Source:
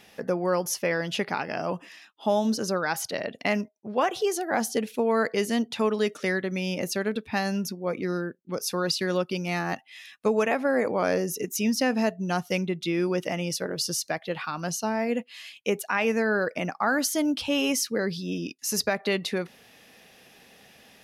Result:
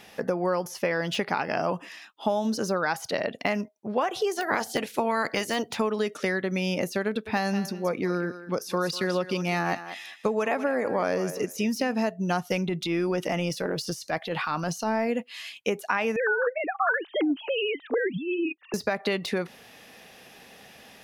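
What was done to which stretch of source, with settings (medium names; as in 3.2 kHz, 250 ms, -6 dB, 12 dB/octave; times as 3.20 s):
4.35–5.75 s: spectral peaks clipped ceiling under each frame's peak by 16 dB
7.07–11.92 s: thinning echo 195 ms, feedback 16%, level -13 dB
12.51–15.07 s: transient shaper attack -9 dB, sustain +3 dB
16.16–18.74 s: formants replaced by sine waves
whole clip: compression 10:1, threshold -26 dBFS; peaking EQ 950 Hz +3 dB 1.6 oct; de-esser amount 75%; trim +3 dB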